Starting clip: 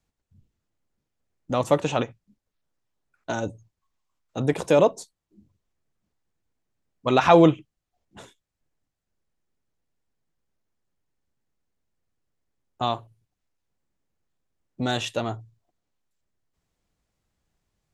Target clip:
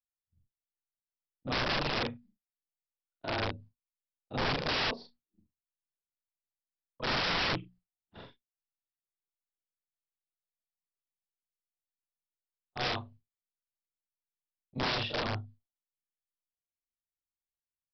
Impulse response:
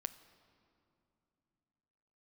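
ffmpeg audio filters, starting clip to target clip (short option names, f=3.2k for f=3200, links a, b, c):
-af "afftfilt=real='re':imag='-im':win_size=4096:overlap=0.75,bandreject=f=60:t=h:w=6,bandreject=f=120:t=h:w=6,bandreject=f=180:t=h:w=6,bandreject=f=240:t=h:w=6,agate=range=-33dB:threshold=-51dB:ratio=3:detection=peak,lowshelf=f=120:g=8.5,alimiter=limit=-15dB:level=0:latency=1:release=26,aresample=11025,aeval=exprs='(mod(18.8*val(0)+1,2)-1)/18.8':c=same,aresample=44100"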